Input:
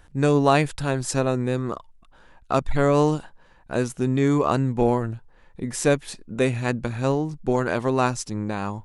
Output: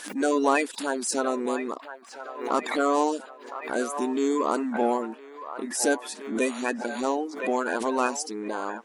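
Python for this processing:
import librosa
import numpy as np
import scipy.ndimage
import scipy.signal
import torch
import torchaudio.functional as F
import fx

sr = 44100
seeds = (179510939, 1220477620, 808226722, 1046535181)

p1 = fx.spec_quant(x, sr, step_db=30)
p2 = fx.high_shelf(p1, sr, hz=7000.0, db=5.5)
p3 = np.clip(p2, -10.0 ** (-21.0 / 20.0), 10.0 ** (-21.0 / 20.0))
p4 = p2 + (p3 * 10.0 ** (-10.0 / 20.0))
p5 = fx.brickwall_highpass(p4, sr, low_hz=210.0)
p6 = fx.echo_wet_bandpass(p5, sr, ms=1014, feedback_pct=45, hz=1200.0, wet_db=-10)
p7 = fx.pre_swell(p6, sr, db_per_s=87.0)
y = p7 * 10.0 ** (-4.5 / 20.0)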